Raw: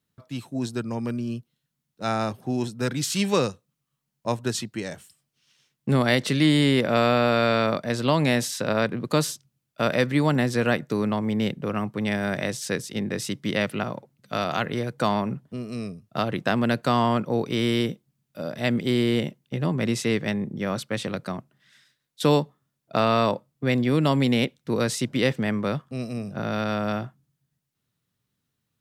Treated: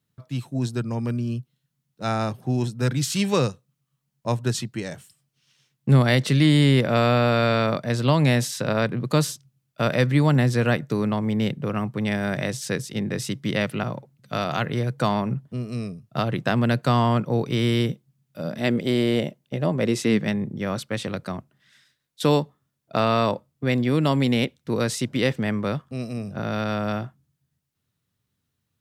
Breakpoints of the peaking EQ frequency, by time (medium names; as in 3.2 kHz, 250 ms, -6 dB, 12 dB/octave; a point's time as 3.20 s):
peaking EQ +8.5 dB 0.54 oct
18.40 s 130 Hz
18.84 s 620 Hz
19.74 s 620 Hz
20.59 s 81 Hz